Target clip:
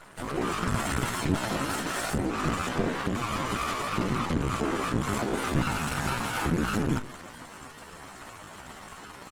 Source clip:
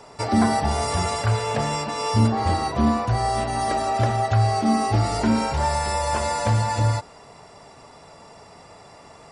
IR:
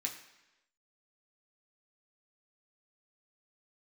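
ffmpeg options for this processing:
-filter_complex "[0:a]acompressor=threshold=0.0501:ratio=8,aresample=16000,volume=31.6,asoftclip=hard,volume=0.0316,aresample=44100,lowshelf=f=120:g=7.5,asplit=2[s0][s1];[s1]adelay=166,lowpass=f=2200:p=1,volume=0.141,asplit=2[s2][s3];[s3]adelay=166,lowpass=f=2200:p=1,volume=0.25[s4];[s0][s2][s4]amix=inputs=3:normalize=0,afftfilt=real='hypot(re,im)*cos(2*PI*random(0))':imag='hypot(re,im)*sin(2*PI*random(1))':win_size=512:overlap=0.75,aeval=exprs='max(val(0),0)':c=same,asetrate=68011,aresample=44100,atempo=0.64842,adynamicequalizer=threshold=0.00224:dfrequency=260:dqfactor=1.1:tfrequency=260:tqfactor=1.1:attack=5:release=100:ratio=0.375:range=1.5:mode=boostabove:tftype=bell,dynaudnorm=f=220:g=3:m=2,volume=2" -ar 48000 -c:a libopus -b:a 20k

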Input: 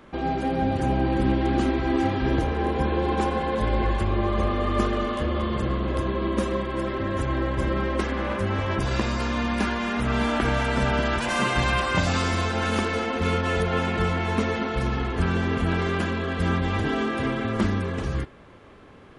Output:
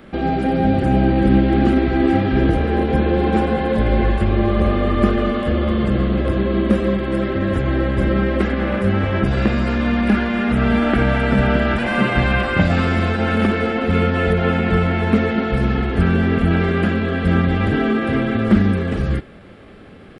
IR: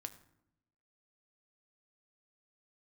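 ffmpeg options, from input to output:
-filter_complex "[0:a]acrossover=split=2900[s0][s1];[s1]acompressor=threshold=0.00355:ratio=4:attack=1:release=60[s2];[s0][s2]amix=inputs=2:normalize=0,equalizer=f=200:t=o:w=0.33:g=6,equalizer=f=1000:t=o:w=0.33:g=-11,equalizer=f=6300:t=o:w=0.33:g=-9,atempo=0.95,volume=2.24"

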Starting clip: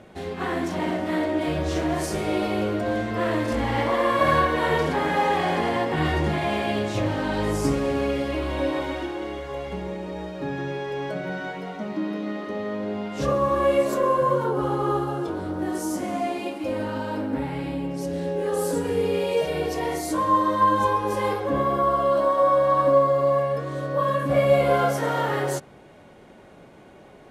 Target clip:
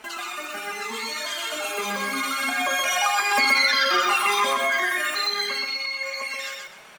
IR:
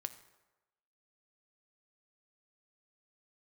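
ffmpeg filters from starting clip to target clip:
-filter_complex "[0:a]acompressor=threshold=0.0316:ratio=10,flanger=delay=18:depth=2.9:speed=0.82,asetrate=172431,aresample=44100,dynaudnorm=f=170:g=31:m=5.01,asplit=2[s0][s1];[s1]aecho=0:1:125|250|375|500:0.668|0.18|0.0487|0.0132[s2];[s0][s2]amix=inputs=2:normalize=0,volume=1.33"

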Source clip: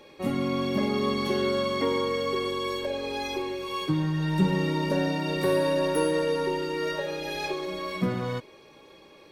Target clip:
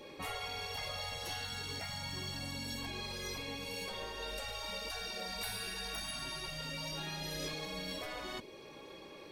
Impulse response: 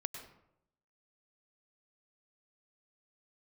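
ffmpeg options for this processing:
-af "afftfilt=real='re*lt(hypot(re,im),0.0708)':imag='im*lt(hypot(re,im),0.0708)':win_size=1024:overlap=0.75,adynamicequalizer=threshold=0.00178:dfrequency=1300:dqfactor=0.85:tfrequency=1300:tqfactor=0.85:attack=5:release=100:ratio=0.375:range=3.5:mode=cutabove:tftype=bell,volume=1.12"

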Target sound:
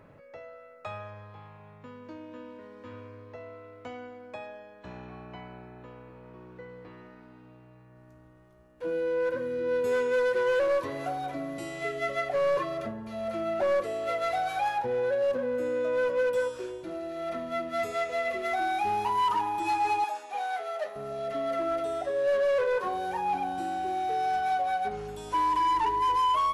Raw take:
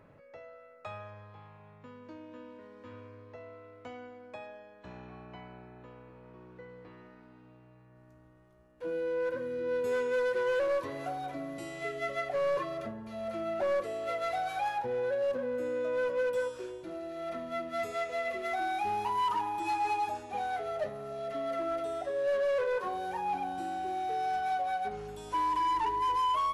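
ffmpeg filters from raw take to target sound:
-filter_complex "[0:a]asettb=1/sr,asplit=3[s0][s1][s2];[s0]atrim=end=20.044[s3];[s1]atrim=start=20.04:end=20.96,asetpts=PTS-STARTPTS,afade=t=in:d=0.004:c=qsin,afade=t=out:st=0.916:d=0.004:c=qsin,highpass=660[s4];[s2]atrim=start=20.956[s5];[s3][s4]acrossfade=d=0.004:c1=hsin:c2=qsin[s6];[s6][s5]acrossfade=d=0.004:c1=qsin:c2=hsin,volume=1.58"

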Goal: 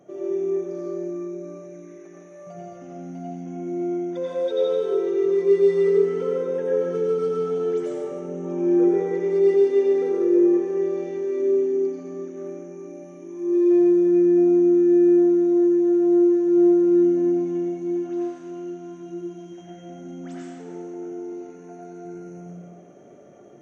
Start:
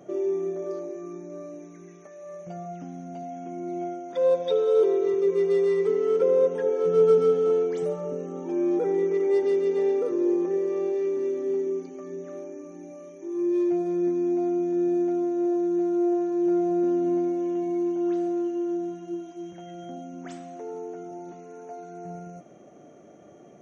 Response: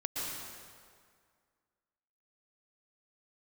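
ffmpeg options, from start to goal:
-filter_complex "[0:a]alimiter=limit=0.158:level=0:latency=1:release=211[s0];[1:a]atrim=start_sample=2205,asetrate=61740,aresample=44100[s1];[s0][s1]afir=irnorm=-1:irlink=0"

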